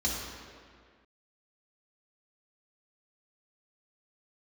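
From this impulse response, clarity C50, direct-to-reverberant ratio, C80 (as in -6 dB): 0.5 dB, -5.5 dB, 2.0 dB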